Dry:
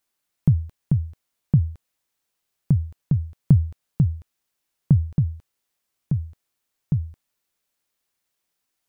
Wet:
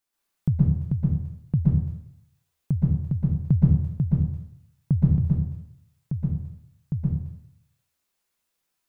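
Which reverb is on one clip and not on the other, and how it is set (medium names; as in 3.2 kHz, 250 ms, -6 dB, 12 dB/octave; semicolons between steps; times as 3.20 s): plate-style reverb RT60 0.72 s, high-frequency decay 0.8×, pre-delay 110 ms, DRR -6 dB; trim -6 dB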